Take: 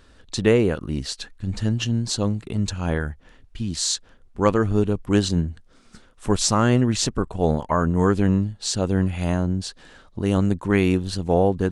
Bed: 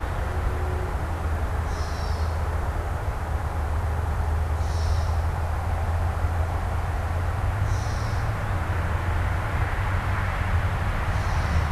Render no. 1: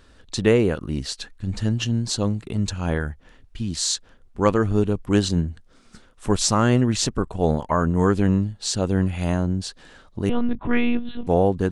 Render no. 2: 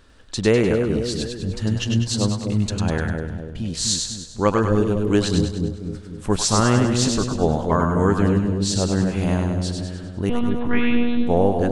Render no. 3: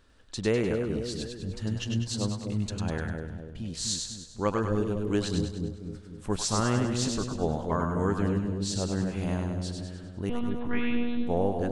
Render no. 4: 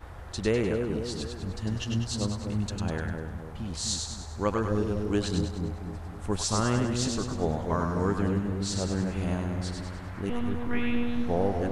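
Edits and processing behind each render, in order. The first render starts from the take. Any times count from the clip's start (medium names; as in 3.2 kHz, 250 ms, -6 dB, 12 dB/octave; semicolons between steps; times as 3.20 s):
10.29–11.27 s: monotone LPC vocoder at 8 kHz 240 Hz
two-band feedback delay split 610 Hz, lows 250 ms, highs 100 ms, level -4 dB
trim -9 dB
add bed -16 dB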